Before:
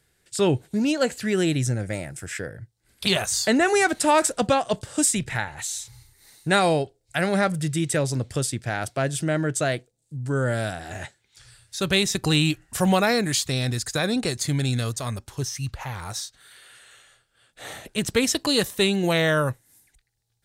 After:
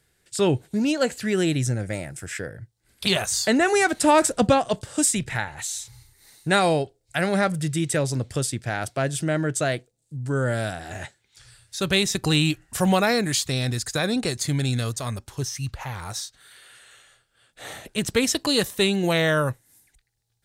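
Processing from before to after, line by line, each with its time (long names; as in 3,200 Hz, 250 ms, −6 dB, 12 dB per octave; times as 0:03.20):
0:04.02–0:04.69: low-shelf EQ 380 Hz +7 dB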